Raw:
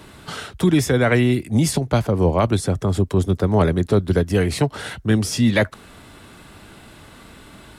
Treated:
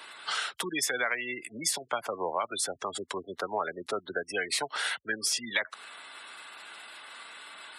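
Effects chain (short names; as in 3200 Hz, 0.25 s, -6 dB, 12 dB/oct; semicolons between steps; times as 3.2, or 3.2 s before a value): spectral gate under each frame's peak -25 dB strong; HPF 1100 Hz 12 dB/oct; compressor 6:1, threshold -29 dBFS, peak gain reduction 11.5 dB; gain +3 dB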